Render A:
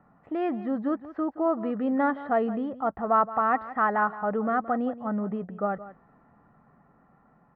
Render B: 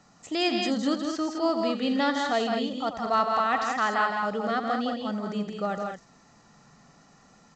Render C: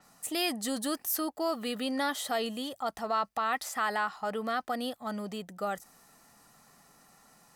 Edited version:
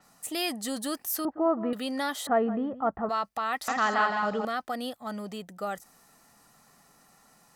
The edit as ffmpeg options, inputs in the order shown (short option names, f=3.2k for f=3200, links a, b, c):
-filter_complex "[0:a]asplit=2[a][b];[2:a]asplit=4[c][d][e][f];[c]atrim=end=1.252[g];[a]atrim=start=1.248:end=1.732[h];[d]atrim=start=1.728:end=2.272[i];[b]atrim=start=2.268:end=3.092[j];[e]atrim=start=3.088:end=3.682[k];[1:a]atrim=start=3.678:end=4.452[l];[f]atrim=start=4.448[m];[g][h]acrossfade=d=0.004:c1=hsin:c2=hsin[n];[n][i]acrossfade=d=0.004:c1=hsin:c2=hsin[o];[o][j]acrossfade=d=0.004:c1=hsin:c2=hsin[p];[p][k]acrossfade=d=0.004:c1=hsin:c2=hsin[q];[q][l]acrossfade=d=0.004:c1=hsin:c2=hsin[r];[r][m]acrossfade=d=0.004:c1=hsin:c2=hsin"